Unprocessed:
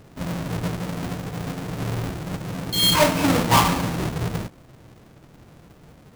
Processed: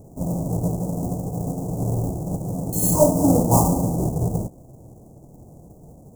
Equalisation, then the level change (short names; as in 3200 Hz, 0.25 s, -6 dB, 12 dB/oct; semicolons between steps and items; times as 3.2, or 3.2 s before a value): Chebyshev band-stop 750–7100 Hz, order 3; +4.0 dB